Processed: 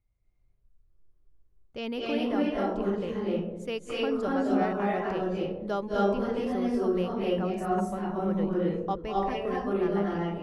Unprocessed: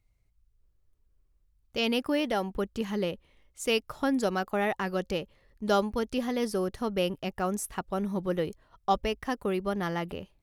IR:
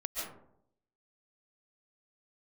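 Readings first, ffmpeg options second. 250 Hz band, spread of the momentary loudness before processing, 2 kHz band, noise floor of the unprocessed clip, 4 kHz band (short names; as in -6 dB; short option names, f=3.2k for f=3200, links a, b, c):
+2.5 dB, 7 LU, -3.5 dB, -70 dBFS, -6.0 dB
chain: -filter_complex "[0:a]lowpass=f=1.7k:p=1[a];[1:a]atrim=start_sample=2205,asetrate=24696,aresample=44100[b];[a][b]afir=irnorm=-1:irlink=0,volume=-5.5dB"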